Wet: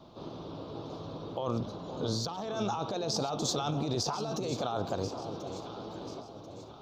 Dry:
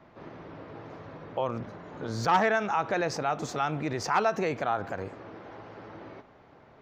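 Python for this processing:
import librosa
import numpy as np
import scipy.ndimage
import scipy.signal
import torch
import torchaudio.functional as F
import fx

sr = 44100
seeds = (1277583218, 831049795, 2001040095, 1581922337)

y = fx.curve_eq(x, sr, hz=(350.0, 1200.0, 1900.0, 3600.0, 8800.0), db=(0, -3, -21, 10, 3))
y = fx.over_compress(y, sr, threshold_db=-33.0, ratio=-1.0)
y = fx.echo_alternate(y, sr, ms=519, hz=810.0, feedback_pct=64, wet_db=-8.5)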